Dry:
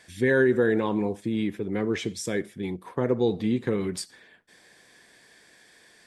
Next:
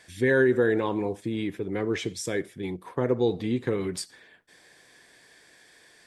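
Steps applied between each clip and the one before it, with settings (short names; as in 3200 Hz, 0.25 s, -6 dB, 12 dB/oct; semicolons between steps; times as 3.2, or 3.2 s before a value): bell 210 Hz -7.5 dB 0.23 oct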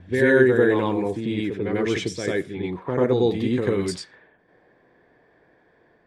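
reverse echo 94 ms -3.5 dB; low-pass opened by the level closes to 820 Hz, open at -22.5 dBFS; gain +3.5 dB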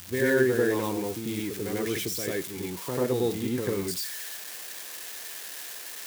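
switching spikes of -19 dBFS; gain -6.5 dB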